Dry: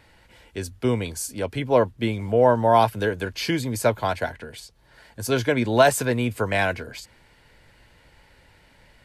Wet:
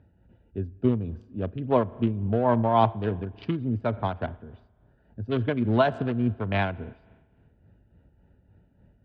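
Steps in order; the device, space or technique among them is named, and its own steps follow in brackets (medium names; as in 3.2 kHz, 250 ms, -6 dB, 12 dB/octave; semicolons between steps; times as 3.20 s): local Wiener filter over 41 samples; combo amplifier with spring reverb and tremolo (spring tank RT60 1.4 s, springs 38 ms, chirp 50 ms, DRR 19.5 dB; tremolo 3.5 Hz, depth 48%; cabinet simulation 100–4500 Hz, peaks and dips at 130 Hz -6 dB, 310 Hz -4 dB, 500 Hz -7 dB, 1.2 kHz +5 dB, 3.2 kHz +7 dB); tilt EQ -3 dB/octave; trim -1.5 dB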